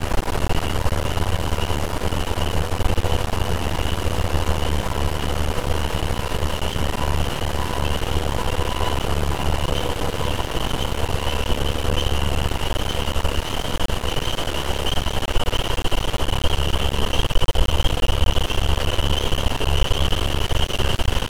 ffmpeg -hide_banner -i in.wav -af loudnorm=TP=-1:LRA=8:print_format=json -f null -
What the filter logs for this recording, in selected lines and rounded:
"input_i" : "-23.3",
"input_tp" : "-5.0",
"input_lra" : "2.0",
"input_thresh" : "-33.3",